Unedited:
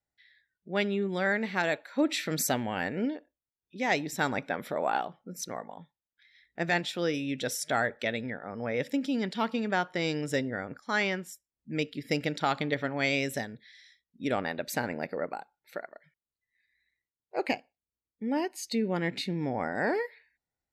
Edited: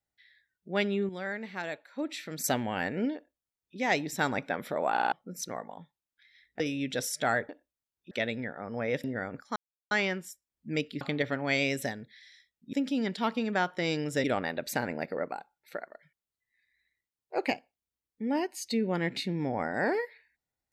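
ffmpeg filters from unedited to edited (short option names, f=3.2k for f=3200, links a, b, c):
-filter_complex "[0:a]asplit=15[a][b][c][d][e][f][g][h][i][j][k][l][m][n][o];[a]atrim=end=1.092[p];[b]atrim=start=1.088:end=2.442,asetpts=PTS-STARTPTS,volume=-8dB[q];[c]atrim=start=2.438:end=4.972[r];[d]atrim=start=4.918:end=4.972[s];[e]atrim=start=4.918:end=4.972[t];[f]atrim=start=4.918:end=4.972[u];[g]atrim=start=5.118:end=6.602[v];[h]atrim=start=7.078:end=7.972[w];[i]atrim=start=3.148:end=3.772[x];[j]atrim=start=7.968:end=8.902[y];[k]atrim=start=10.408:end=10.93,asetpts=PTS-STARTPTS,afade=t=out:st=0.518:d=0.004:c=hsin,apad=pad_dur=0.35[z];[l]atrim=start=10.93:end=12.032,asetpts=PTS-STARTPTS,afade=t=in:d=0.004:c=hsin[aa];[m]atrim=start=12.528:end=14.252[ab];[n]atrim=start=8.898:end=10.412[ac];[o]atrim=start=14.248[ad];[p][q]acrossfade=d=0.004:c1=hsin:c2=hsin[ae];[ae][r]acrossfade=d=0.004:c1=hsin:c2=hsin[af];[af][s]acrossfade=d=0.004:c1=hsin:c2=hsin[ag];[ag][t]acrossfade=d=0.004:c1=hsin:c2=hsin[ah];[ah][u]acrossfade=d=0.004:c1=hsin:c2=hsin[ai];[ai][v]acrossfade=d=0.004:c1=hsin:c2=hsin[aj];[aj][w]acrossfade=d=0.004:c1=hsin:c2=hsin[ak];[ak][x]acrossfade=d=0.004:c1=hsin:c2=hsin[al];[al][y]acrossfade=d=0.004:c1=hsin:c2=hsin[am];[z][aa]concat=n=2:v=0:a=1[an];[am][an]acrossfade=d=0.004:c1=hsin:c2=hsin[ao];[ao][ab]acrossfade=d=0.004:c1=hsin:c2=hsin[ap];[ap][ac]acrossfade=d=0.004:c1=hsin:c2=hsin[aq];[aq][ad]acrossfade=d=0.004:c1=hsin:c2=hsin"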